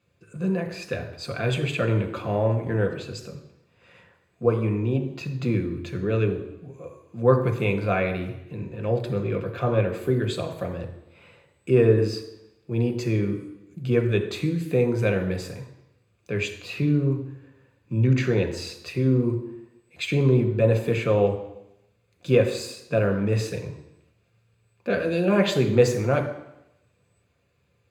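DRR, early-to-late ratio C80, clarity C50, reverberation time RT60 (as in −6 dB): 4.0 dB, 11.5 dB, 9.5 dB, 0.85 s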